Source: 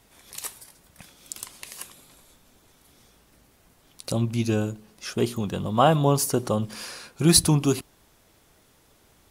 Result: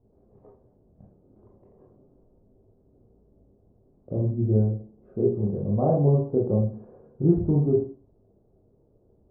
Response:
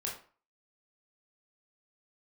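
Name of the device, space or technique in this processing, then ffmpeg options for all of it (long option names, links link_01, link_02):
next room: -filter_complex "[0:a]lowpass=frequency=560:width=0.5412,lowpass=frequency=560:width=1.3066[link_01];[1:a]atrim=start_sample=2205[link_02];[link_01][link_02]afir=irnorm=-1:irlink=0"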